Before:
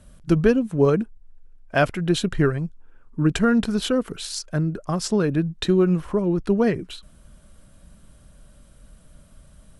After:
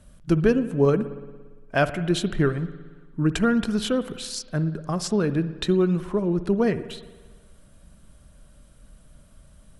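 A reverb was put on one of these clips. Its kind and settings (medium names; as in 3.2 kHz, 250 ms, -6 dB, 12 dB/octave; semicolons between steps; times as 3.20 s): spring tank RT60 1.4 s, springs 57 ms, chirp 60 ms, DRR 13 dB; trim -2 dB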